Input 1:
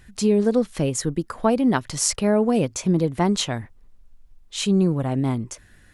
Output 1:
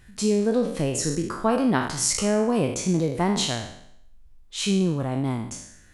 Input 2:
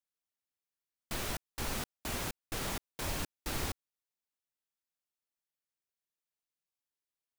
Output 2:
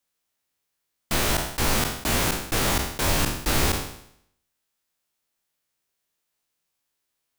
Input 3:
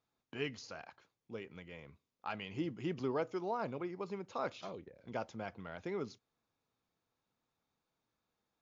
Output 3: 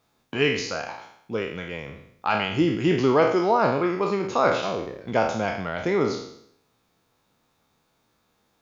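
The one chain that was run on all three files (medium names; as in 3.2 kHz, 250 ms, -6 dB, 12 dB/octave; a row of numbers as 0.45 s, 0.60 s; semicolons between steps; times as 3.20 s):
spectral sustain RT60 0.70 s; normalise loudness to -24 LUFS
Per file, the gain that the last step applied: -3.5 dB, +12.0 dB, +15.5 dB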